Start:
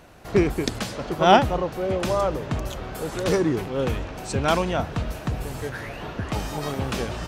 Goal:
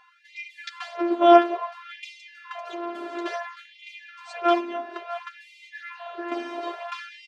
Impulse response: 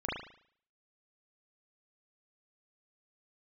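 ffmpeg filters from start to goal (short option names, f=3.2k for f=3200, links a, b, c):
-filter_complex "[0:a]asplit=3[a][b][c];[a]afade=t=out:st=4.59:d=0.02[d];[b]acompressor=threshold=-25dB:ratio=6,afade=t=in:st=4.59:d=0.02,afade=t=out:st=5.15:d=0.02[e];[c]afade=t=in:st=5.15:d=0.02[f];[d][e][f]amix=inputs=3:normalize=0,afftfilt=real='hypot(re,im)*cos(PI*b)':imag='0':win_size=512:overlap=0.75,flanger=delay=7.6:depth=4.3:regen=10:speed=0.41:shape=sinusoidal,highpass=140,lowpass=2.8k,asplit=2[g][h];[h]adelay=641.4,volume=-12dB,highshelf=f=4k:g=-14.4[i];[g][i]amix=inputs=2:normalize=0,afftfilt=real='re*gte(b*sr/1024,210*pow(2000/210,0.5+0.5*sin(2*PI*0.58*pts/sr)))':imag='im*gte(b*sr/1024,210*pow(2000/210,0.5+0.5*sin(2*PI*0.58*pts/sr)))':win_size=1024:overlap=0.75,volume=6dB"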